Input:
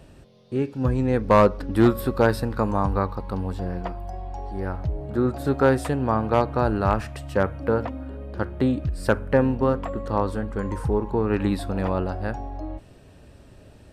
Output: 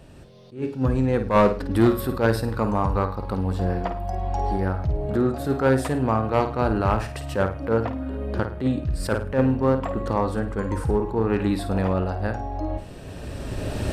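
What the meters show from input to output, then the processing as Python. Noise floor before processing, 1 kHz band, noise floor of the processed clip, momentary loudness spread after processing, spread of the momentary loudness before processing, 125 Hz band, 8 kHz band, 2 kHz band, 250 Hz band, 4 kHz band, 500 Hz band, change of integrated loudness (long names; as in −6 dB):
−50 dBFS, 0.0 dB, −38 dBFS, 10 LU, 13 LU, +1.5 dB, +3.0 dB, −0.5 dB, +0.5 dB, +1.5 dB, −0.5 dB, 0.0 dB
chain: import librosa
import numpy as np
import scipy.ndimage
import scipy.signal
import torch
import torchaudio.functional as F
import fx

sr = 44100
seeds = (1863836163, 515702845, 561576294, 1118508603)

p1 = fx.recorder_agc(x, sr, target_db=-15.0, rise_db_per_s=14.0, max_gain_db=30)
p2 = fx.room_flutter(p1, sr, wall_m=9.1, rt60_s=0.33)
p3 = np.clip(p2, -10.0 ** (-16.0 / 20.0), 10.0 ** (-16.0 / 20.0))
p4 = p2 + (p3 * 10.0 ** (-5.0 / 20.0))
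p5 = fx.attack_slew(p4, sr, db_per_s=180.0)
y = p5 * 10.0 ** (-3.5 / 20.0)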